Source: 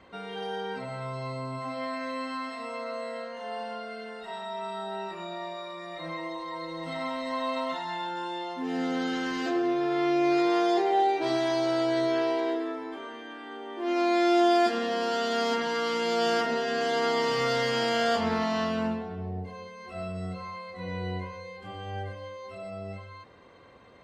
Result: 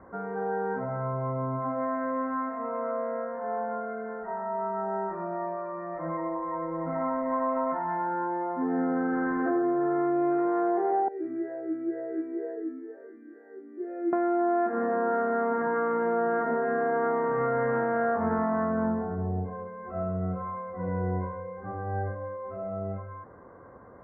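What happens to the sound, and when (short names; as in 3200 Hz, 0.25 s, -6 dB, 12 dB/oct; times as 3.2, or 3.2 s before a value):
11.08–14.13 vowel sweep e-i 2.1 Hz
whole clip: Wiener smoothing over 9 samples; steep low-pass 1700 Hz 48 dB/oct; compressor, threshold -28 dBFS; gain +5 dB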